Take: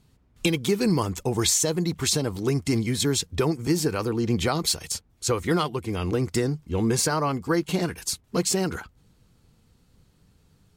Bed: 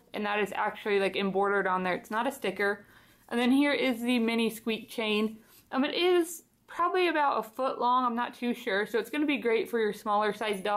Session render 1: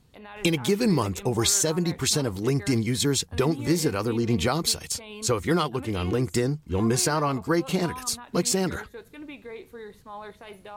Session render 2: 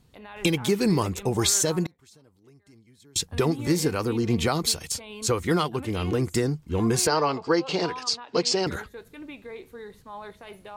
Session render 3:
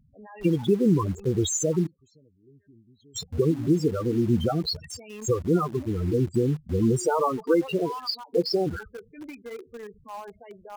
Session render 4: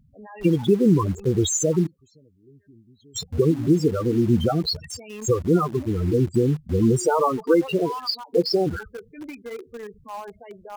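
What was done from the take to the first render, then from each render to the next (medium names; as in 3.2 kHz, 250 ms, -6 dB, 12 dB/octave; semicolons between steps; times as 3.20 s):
add bed -13 dB
1.86–3.16 s: inverted gate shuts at -27 dBFS, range -31 dB; 7.07–8.67 s: cabinet simulation 180–6300 Hz, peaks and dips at 210 Hz -10 dB, 460 Hz +6 dB, 870 Hz +4 dB, 2.9 kHz +4 dB, 4.8 kHz +9 dB
loudest bins only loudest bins 8; in parallel at -11 dB: bit crusher 6-bit
trim +3.5 dB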